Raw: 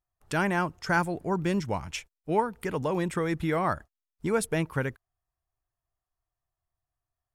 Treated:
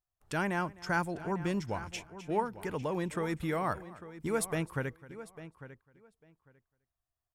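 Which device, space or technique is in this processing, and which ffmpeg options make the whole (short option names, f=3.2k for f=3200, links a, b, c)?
ducked delay: -filter_complex "[0:a]asettb=1/sr,asplit=3[a][b][c];[a]atrim=end=3.234[d];[b]atrim=start=3.23:end=4.55,asetpts=PTS-STARTPTS,afade=t=in:d=0.004:c=qsin,afade=t=out:st=1.316:d=0.004:c=qsin,highshelf=f=7.8k:g=7.5[e];[c]atrim=start=4.546[f];[d][e]acrossfade=d=0.004:c1=hsin:c2=qsin[g];[g][f]acrossfade=d=0.004:c1=qsin:c2=hsin,asplit=3[h][i][j];[i]adelay=256,volume=-2.5dB[k];[j]apad=whole_len=335275[l];[k][l]sidechaincompress=threshold=-46dB:ratio=6:attack=16:release=643[m];[h][m]amix=inputs=2:normalize=0,asplit=2[n][o];[o]adelay=849,lowpass=f=3.8k:p=1,volume=-14dB,asplit=2[p][q];[q]adelay=849,lowpass=f=3.8k:p=1,volume=0.17[r];[n][p][r]amix=inputs=3:normalize=0,volume=-5.5dB"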